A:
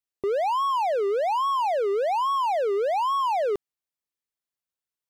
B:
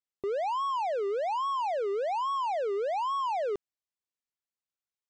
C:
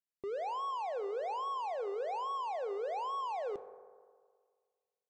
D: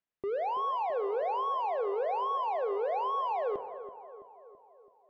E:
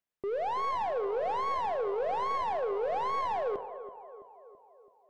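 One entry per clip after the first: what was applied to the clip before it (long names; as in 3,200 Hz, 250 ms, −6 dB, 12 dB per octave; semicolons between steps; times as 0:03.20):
Butterworth low-pass 8,500 Hz 72 dB per octave; level −6 dB
convolution reverb RT60 1.8 s, pre-delay 3 ms, DRR 12 dB; level −7.5 dB
low-pass filter 2,700 Hz 12 dB per octave; on a send: feedback echo with a low-pass in the loop 331 ms, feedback 59%, low-pass 1,700 Hz, level −12 dB; on the sum: level +5.5 dB
stylus tracing distortion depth 0.073 ms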